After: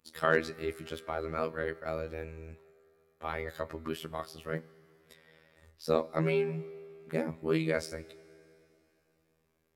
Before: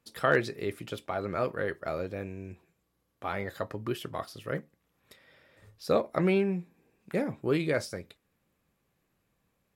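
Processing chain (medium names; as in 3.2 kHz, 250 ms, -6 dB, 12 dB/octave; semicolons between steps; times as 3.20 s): robot voice 80.1 Hz; Schroeder reverb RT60 3.2 s, combs from 31 ms, DRR 19.5 dB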